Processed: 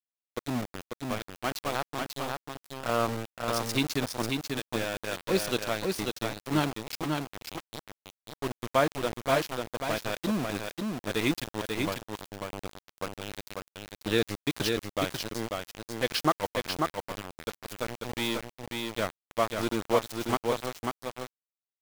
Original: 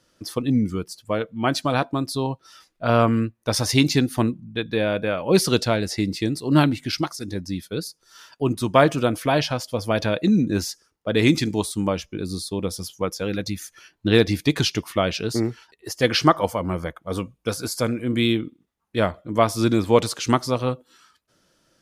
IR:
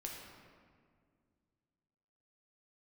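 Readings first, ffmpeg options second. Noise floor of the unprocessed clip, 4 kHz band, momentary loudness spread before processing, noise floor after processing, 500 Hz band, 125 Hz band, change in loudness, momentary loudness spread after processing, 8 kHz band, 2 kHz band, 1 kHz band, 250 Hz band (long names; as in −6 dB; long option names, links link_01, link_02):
−69 dBFS, −7.0 dB, 11 LU, below −85 dBFS, −8.5 dB, −13.0 dB, −9.0 dB, 12 LU, −7.5 dB, −6.0 dB, −6.5 dB, −11.0 dB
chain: -filter_complex "[0:a]lowshelf=frequency=190:gain=-6.5,aeval=exprs='val(0)*gte(abs(val(0)),0.0891)':channel_layout=same,asplit=2[link_01][link_02];[link_02]aecho=0:1:542:0.631[link_03];[link_01][link_03]amix=inputs=2:normalize=0,volume=-8dB"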